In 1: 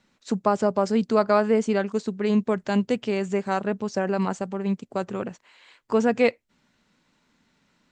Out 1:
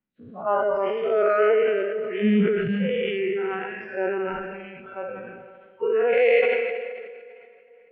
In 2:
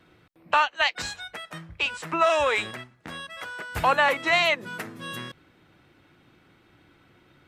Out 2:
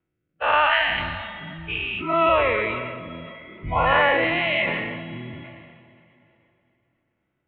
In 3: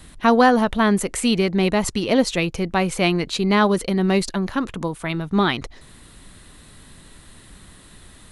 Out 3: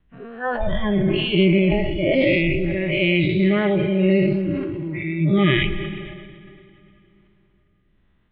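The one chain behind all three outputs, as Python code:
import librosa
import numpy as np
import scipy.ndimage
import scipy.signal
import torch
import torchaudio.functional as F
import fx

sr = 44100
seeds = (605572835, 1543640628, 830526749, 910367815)

y = fx.spec_dilate(x, sr, span_ms=240)
y = fx.noise_reduce_blind(y, sr, reduce_db=24)
y = scipy.signal.sosfilt(scipy.signal.butter(8, 3200.0, 'lowpass', fs=sr, output='sos'), y)
y = fx.low_shelf(y, sr, hz=280.0, db=5.5)
y = fx.rotary(y, sr, hz=1.2)
y = fx.rev_plate(y, sr, seeds[0], rt60_s=3.2, hf_ratio=0.85, predelay_ms=110, drr_db=12.5)
y = fx.sustainer(y, sr, db_per_s=31.0)
y = y * 10.0 ** (-2.5 / 20.0)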